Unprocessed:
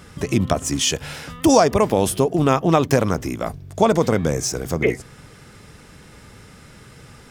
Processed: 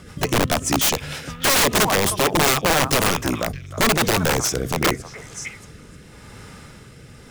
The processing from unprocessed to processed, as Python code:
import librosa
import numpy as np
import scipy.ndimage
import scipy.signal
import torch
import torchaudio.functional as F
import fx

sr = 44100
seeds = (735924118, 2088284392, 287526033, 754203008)

p1 = fx.echo_stepped(x, sr, ms=312, hz=1100.0, octaves=1.4, feedback_pct=70, wet_db=-5.5)
p2 = fx.quant_float(p1, sr, bits=2)
p3 = p1 + (p2 * 10.0 ** (-5.0 / 20.0))
p4 = fx.rotary_switch(p3, sr, hz=6.7, then_hz=0.9, switch_at_s=1.9)
y = (np.mod(10.0 ** (11.5 / 20.0) * p4 + 1.0, 2.0) - 1.0) / 10.0 ** (11.5 / 20.0)